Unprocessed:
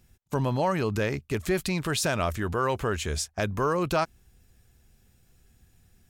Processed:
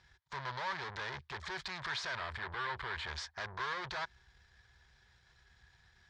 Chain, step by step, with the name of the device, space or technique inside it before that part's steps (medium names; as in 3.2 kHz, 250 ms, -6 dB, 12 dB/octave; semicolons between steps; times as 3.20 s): scooped metal amplifier (valve stage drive 42 dB, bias 0.6; cabinet simulation 82–4300 Hz, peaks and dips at 97 Hz -8 dB, 180 Hz -4 dB, 370 Hz +9 dB, 960 Hz +9 dB, 1.7 kHz +7 dB, 2.7 kHz -10 dB; amplifier tone stack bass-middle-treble 10-0-10); 2.16–3.07 s: peaking EQ 6.2 kHz -13.5 dB 0.52 oct; trim +12.5 dB